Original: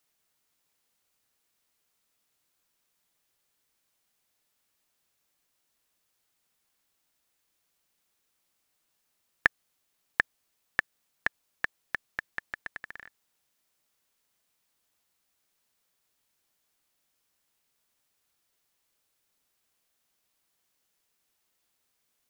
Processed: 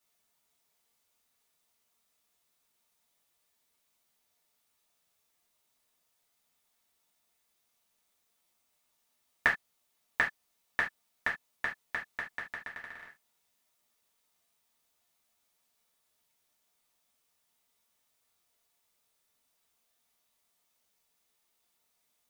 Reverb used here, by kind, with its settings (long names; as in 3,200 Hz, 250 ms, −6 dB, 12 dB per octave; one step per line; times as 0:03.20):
reverb whose tail is shaped and stops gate 100 ms falling, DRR −5.5 dB
level −6.5 dB